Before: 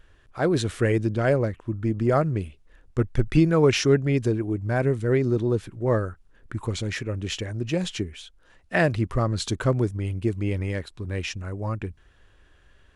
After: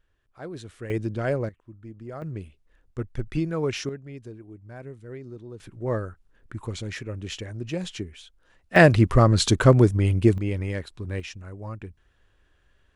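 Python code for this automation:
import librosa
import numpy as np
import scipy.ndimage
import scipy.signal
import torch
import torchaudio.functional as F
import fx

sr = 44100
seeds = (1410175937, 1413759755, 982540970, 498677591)

y = fx.gain(x, sr, db=fx.steps((0.0, -15.0), (0.9, -4.5), (1.49, -17.0), (2.22, -8.0), (3.89, -17.5), (5.6, -4.5), (8.76, 7.0), (10.38, -1.0), (11.2, -7.0)))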